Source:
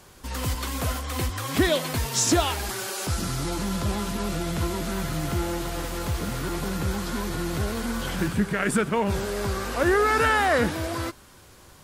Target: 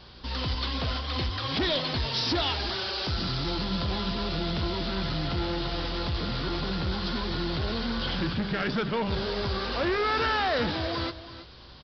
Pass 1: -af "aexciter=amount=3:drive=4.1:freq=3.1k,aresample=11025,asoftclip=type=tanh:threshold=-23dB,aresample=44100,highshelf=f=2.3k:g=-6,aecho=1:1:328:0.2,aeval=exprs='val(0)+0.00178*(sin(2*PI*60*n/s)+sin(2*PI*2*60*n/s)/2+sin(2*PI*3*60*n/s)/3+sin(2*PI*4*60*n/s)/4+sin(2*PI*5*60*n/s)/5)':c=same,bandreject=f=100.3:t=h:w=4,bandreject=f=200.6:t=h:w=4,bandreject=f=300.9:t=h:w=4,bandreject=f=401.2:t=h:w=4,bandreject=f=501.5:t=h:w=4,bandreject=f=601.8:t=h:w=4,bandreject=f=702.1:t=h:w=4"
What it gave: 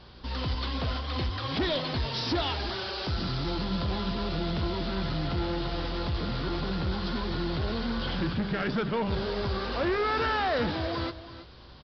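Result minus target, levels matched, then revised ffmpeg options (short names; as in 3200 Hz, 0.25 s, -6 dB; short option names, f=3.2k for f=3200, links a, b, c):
4000 Hz band -3.0 dB
-af "aexciter=amount=3:drive=4.1:freq=3.1k,aresample=11025,asoftclip=type=tanh:threshold=-23dB,aresample=44100,aecho=1:1:328:0.2,aeval=exprs='val(0)+0.00178*(sin(2*PI*60*n/s)+sin(2*PI*2*60*n/s)/2+sin(2*PI*3*60*n/s)/3+sin(2*PI*4*60*n/s)/4+sin(2*PI*5*60*n/s)/5)':c=same,bandreject=f=100.3:t=h:w=4,bandreject=f=200.6:t=h:w=4,bandreject=f=300.9:t=h:w=4,bandreject=f=401.2:t=h:w=4,bandreject=f=501.5:t=h:w=4,bandreject=f=601.8:t=h:w=4,bandreject=f=702.1:t=h:w=4"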